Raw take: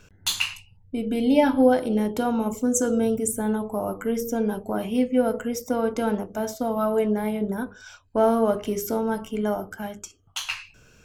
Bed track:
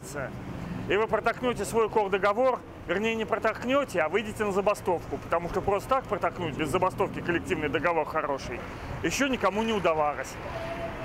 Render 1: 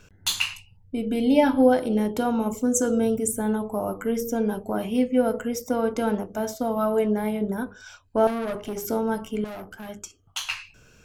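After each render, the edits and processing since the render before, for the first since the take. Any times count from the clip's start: 8.27–8.85 s: valve stage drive 25 dB, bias 0.55; 9.44–9.89 s: valve stage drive 34 dB, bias 0.55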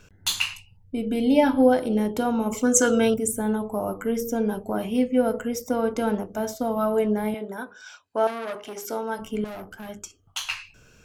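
2.52–3.14 s: peaking EQ 2.4 kHz +14 dB 2.8 oct; 7.34–9.19 s: frequency weighting A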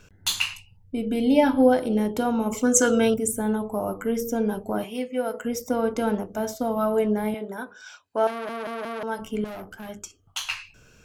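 4.84–5.45 s: high-pass 690 Hz 6 dB/octave; 8.31 s: stutter in place 0.18 s, 4 plays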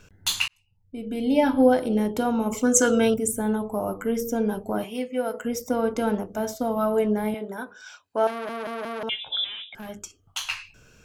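0.48–1.60 s: fade in; 9.09–9.75 s: frequency inversion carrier 3.7 kHz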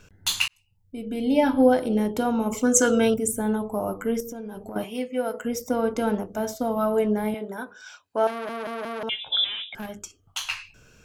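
0.40–1.03 s: treble shelf 5 kHz +5 dB; 4.20–4.76 s: compression 10:1, threshold -32 dBFS; 9.32–9.86 s: gain +4 dB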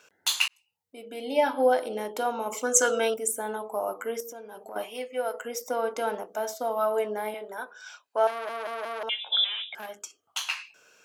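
Chebyshev high-pass 610 Hz, order 2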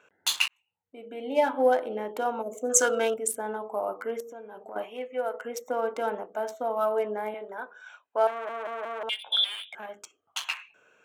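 local Wiener filter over 9 samples; 2.42–2.70 s: time-frequency box 750–5800 Hz -20 dB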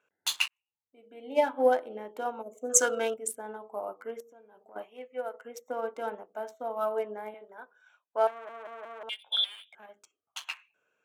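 upward expansion 1.5:1, over -46 dBFS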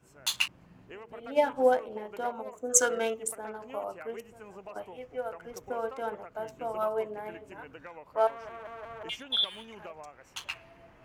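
add bed track -21 dB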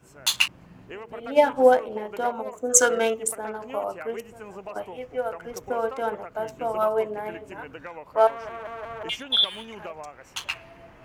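trim +7 dB; peak limiter -3 dBFS, peak gain reduction 2.5 dB

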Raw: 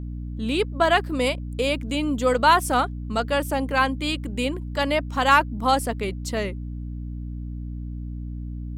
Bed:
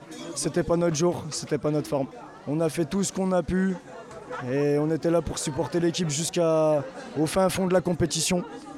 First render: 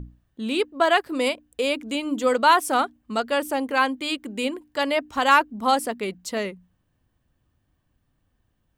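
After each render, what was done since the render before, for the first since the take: hum notches 60/120/180/240/300 Hz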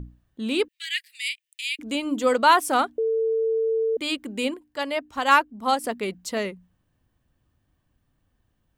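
0.68–1.79 s: steep high-pass 1.9 kHz 72 dB/octave; 2.98–3.97 s: bleep 448 Hz -20 dBFS; 4.54–5.84 s: upward expansion, over -25 dBFS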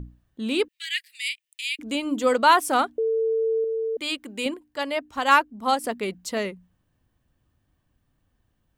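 3.64–4.46 s: bass shelf 470 Hz -6.5 dB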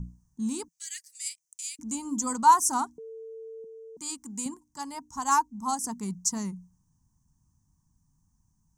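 FFT filter 120 Hz 0 dB, 170 Hz +7 dB, 580 Hz -26 dB, 940 Hz +2 dB, 1.3 kHz -12 dB, 2.6 kHz -23 dB, 3.8 kHz -18 dB, 6.1 kHz +14 dB, 13 kHz -3 dB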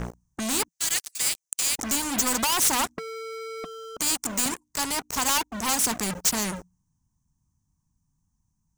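waveshaping leveller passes 5; spectrum-flattening compressor 2:1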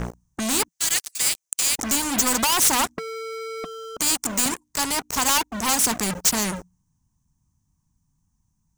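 trim +3.5 dB

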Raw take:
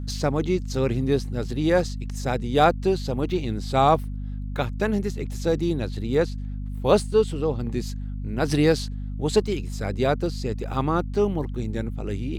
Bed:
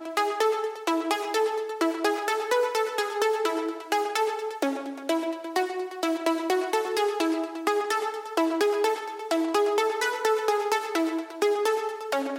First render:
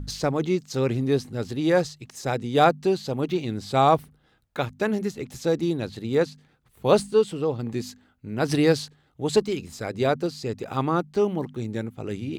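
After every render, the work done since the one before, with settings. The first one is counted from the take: de-hum 50 Hz, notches 5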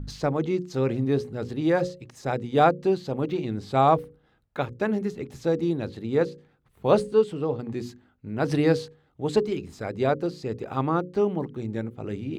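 treble shelf 3.3 kHz -11.5 dB; hum notches 60/120/180/240/300/360/420/480/540 Hz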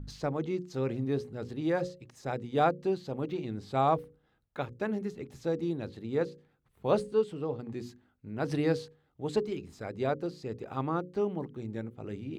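trim -7 dB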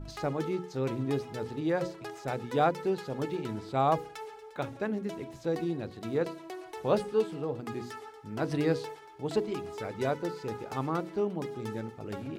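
add bed -17 dB

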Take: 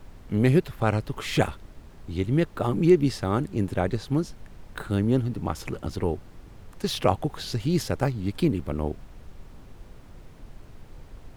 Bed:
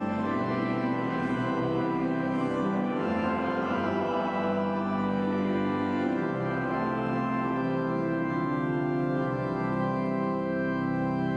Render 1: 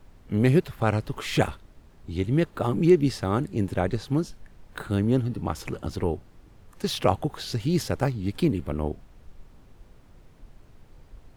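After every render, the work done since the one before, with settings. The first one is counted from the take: noise print and reduce 6 dB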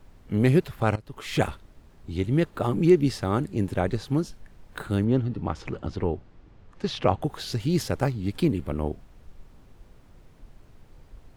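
0.96–1.48 s: fade in, from -18.5 dB; 5.04–7.22 s: distance through air 120 m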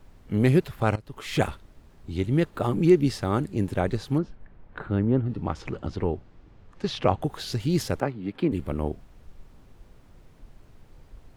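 4.18–5.29 s: low-pass 2 kHz; 8.00–8.52 s: three-band isolator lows -18 dB, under 160 Hz, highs -21 dB, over 3.1 kHz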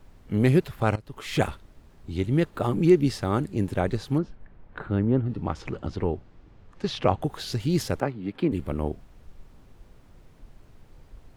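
no audible change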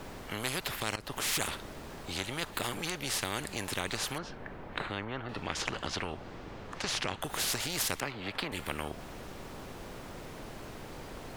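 compression 2:1, threshold -28 dBFS, peak gain reduction 9 dB; spectrum-flattening compressor 4:1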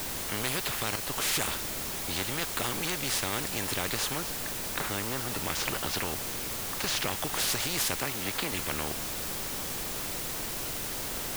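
in parallel at -8 dB: wavefolder -27.5 dBFS; on the sum: word length cut 6-bit, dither triangular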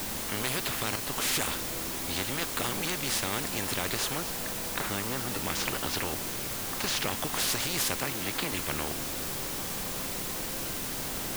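add bed -17 dB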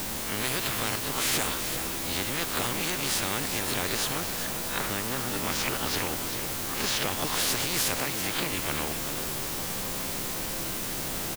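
reverse spectral sustain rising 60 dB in 0.41 s; delay 389 ms -9 dB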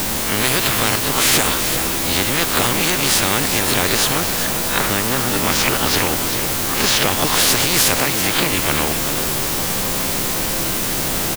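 trim +12 dB; peak limiter -1 dBFS, peak gain reduction 2 dB

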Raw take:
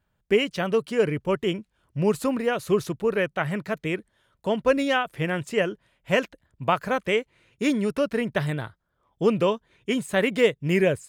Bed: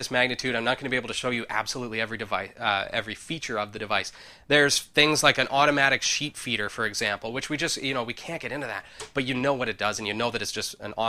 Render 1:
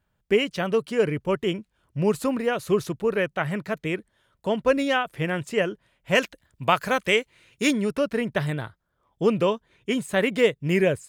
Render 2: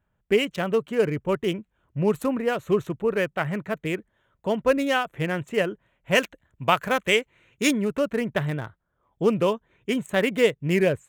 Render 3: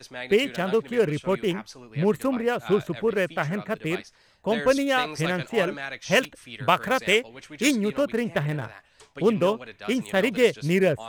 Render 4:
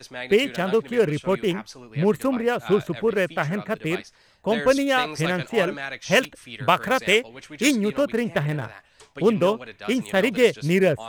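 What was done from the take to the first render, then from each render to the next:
6.15–7.71 s: treble shelf 2 kHz +9 dB
local Wiener filter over 9 samples; treble shelf 8.5 kHz +10.5 dB
add bed -13 dB
trim +2 dB; peak limiter -3 dBFS, peak gain reduction 1 dB

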